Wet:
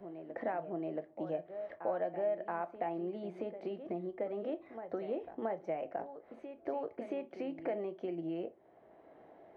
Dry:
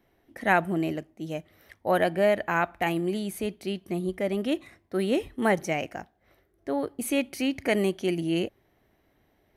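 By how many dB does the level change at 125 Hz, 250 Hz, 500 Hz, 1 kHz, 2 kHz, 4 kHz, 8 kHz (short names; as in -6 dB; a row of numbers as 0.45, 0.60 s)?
-17.0 dB, -13.0 dB, -9.0 dB, -11.0 dB, -21.0 dB, under -25 dB, under -35 dB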